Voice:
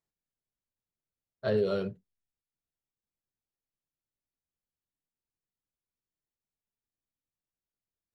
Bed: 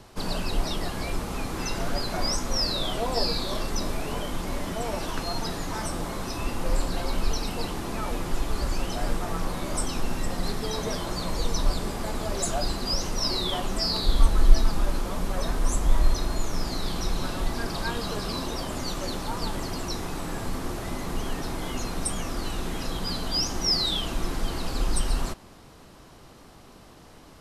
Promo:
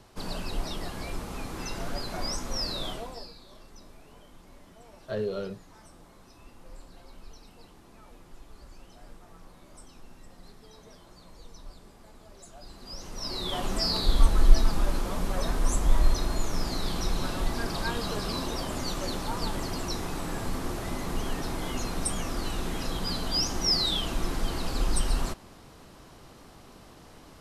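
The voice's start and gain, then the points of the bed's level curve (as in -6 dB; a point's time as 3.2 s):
3.65 s, -3.5 dB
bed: 2.89 s -5.5 dB
3.34 s -22 dB
12.52 s -22 dB
13.66 s -1 dB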